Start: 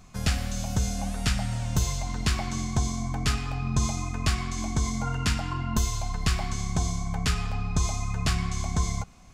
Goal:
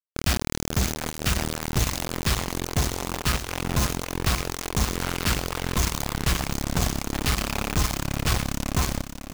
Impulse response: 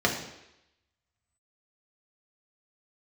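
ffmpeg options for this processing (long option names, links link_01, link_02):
-filter_complex "[0:a]acrossover=split=6900[link_01][link_02];[link_02]acompressor=threshold=-52dB:ratio=4:attack=1:release=60[link_03];[link_01][link_03]amix=inputs=2:normalize=0,acrusher=bits=3:mix=0:aa=0.000001,asplit=2[link_04][link_05];[link_05]aecho=0:1:552|1104|1656|2208|2760:0.335|0.161|0.0772|0.037|0.0178[link_06];[link_04][link_06]amix=inputs=2:normalize=0"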